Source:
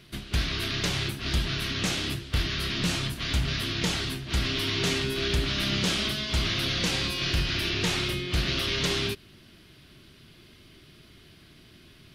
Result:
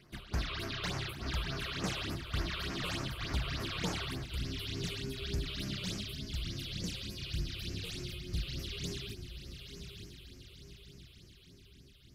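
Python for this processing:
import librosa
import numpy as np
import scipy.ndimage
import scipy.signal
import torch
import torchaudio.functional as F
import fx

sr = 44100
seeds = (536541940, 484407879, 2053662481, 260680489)

y = fx.echo_diffused(x, sr, ms=963, feedback_pct=50, wet_db=-8.0)
y = fx.phaser_stages(y, sr, stages=8, low_hz=220.0, high_hz=3600.0, hz=3.4, feedback_pct=25)
y = fx.peak_eq(y, sr, hz=1000.0, db=fx.steps((0.0, 8.0), (4.26, -6.5), (6.01, -13.5)), octaves=2.2)
y = y * librosa.db_to_amplitude(-9.0)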